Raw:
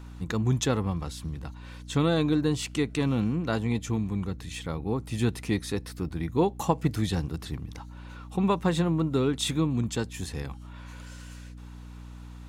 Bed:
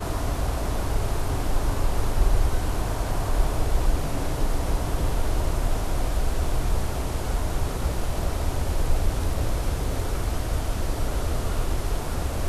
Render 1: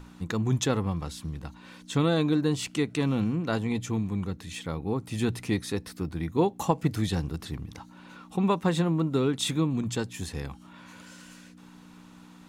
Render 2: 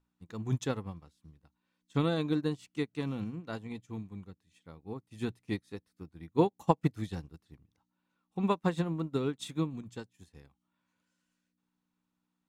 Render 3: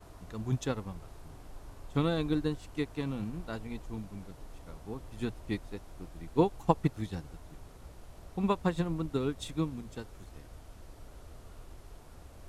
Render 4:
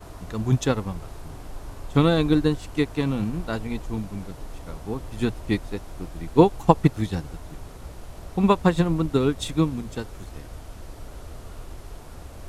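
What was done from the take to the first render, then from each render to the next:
notches 60/120 Hz
upward expander 2.5:1, over -41 dBFS
add bed -24 dB
gain +10.5 dB; limiter -1 dBFS, peak gain reduction 1.5 dB

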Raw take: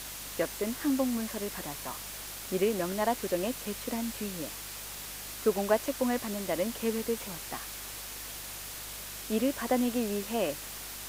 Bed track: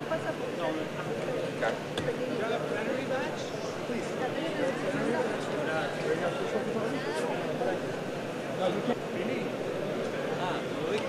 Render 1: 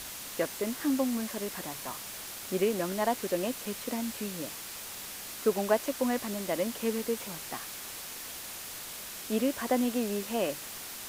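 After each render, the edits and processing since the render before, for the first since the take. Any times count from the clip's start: de-hum 50 Hz, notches 3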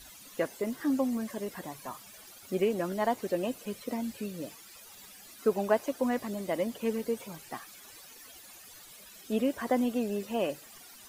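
denoiser 15 dB, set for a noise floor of -42 dBFS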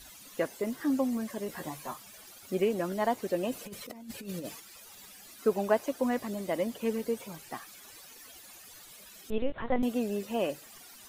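1.48–1.94 doubler 13 ms -2 dB; 3.52–4.6 negative-ratio compressor -39 dBFS, ratio -0.5; 9.3–9.83 LPC vocoder at 8 kHz pitch kept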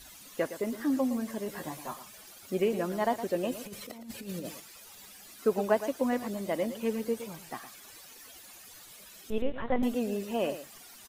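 echo 0.114 s -12 dB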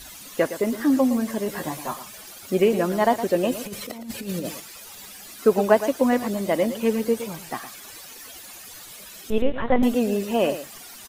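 gain +9 dB

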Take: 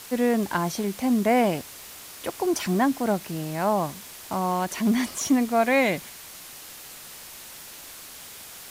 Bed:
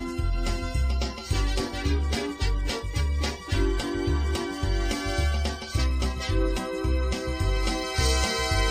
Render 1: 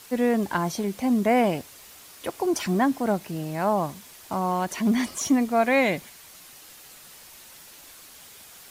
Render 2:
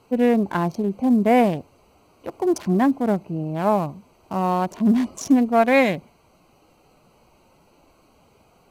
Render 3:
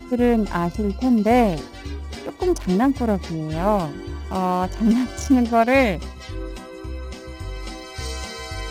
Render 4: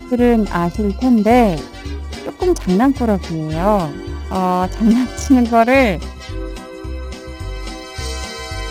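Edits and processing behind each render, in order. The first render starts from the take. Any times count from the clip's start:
denoiser 6 dB, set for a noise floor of -43 dBFS
Wiener smoothing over 25 samples; harmonic-percussive split harmonic +5 dB
add bed -6.5 dB
gain +5 dB; limiter -1 dBFS, peak gain reduction 1.5 dB

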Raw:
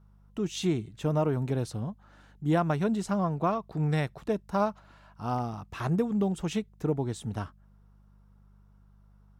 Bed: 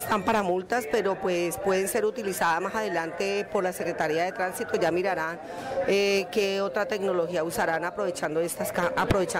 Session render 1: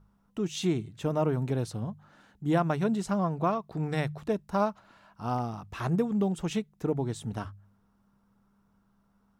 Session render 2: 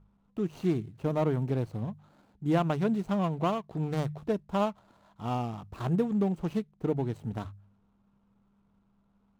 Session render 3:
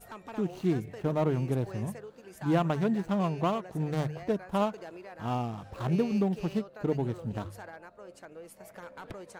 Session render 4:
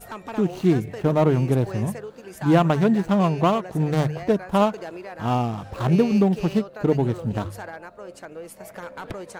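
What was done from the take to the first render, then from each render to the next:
de-hum 50 Hz, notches 3
median filter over 25 samples
add bed -20 dB
gain +9 dB

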